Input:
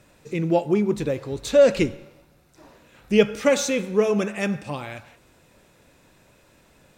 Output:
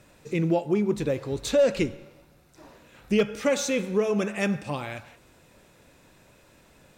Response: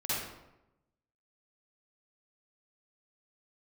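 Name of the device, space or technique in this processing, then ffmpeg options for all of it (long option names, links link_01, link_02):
clipper into limiter: -af "asoftclip=type=hard:threshold=-8.5dB,alimiter=limit=-14dB:level=0:latency=1:release=446"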